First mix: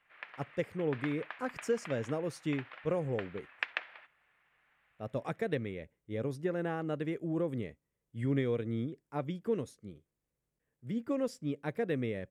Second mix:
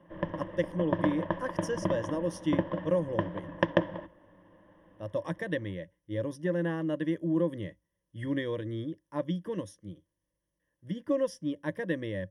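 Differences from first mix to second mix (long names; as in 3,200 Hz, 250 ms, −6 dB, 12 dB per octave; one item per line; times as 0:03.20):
background: remove high-pass with resonance 2,000 Hz, resonance Q 1.7
master: add EQ curve with evenly spaced ripples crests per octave 1.2, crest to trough 15 dB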